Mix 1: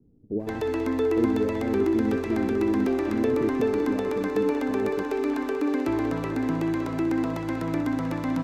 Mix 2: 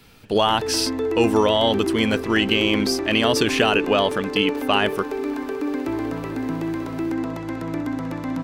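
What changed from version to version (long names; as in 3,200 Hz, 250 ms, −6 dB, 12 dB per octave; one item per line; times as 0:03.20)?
speech: remove transistor ladder low-pass 390 Hz, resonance 40%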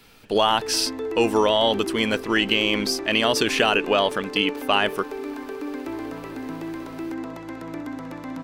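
background −4.0 dB
master: add parametric band 99 Hz −7.5 dB 2.3 octaves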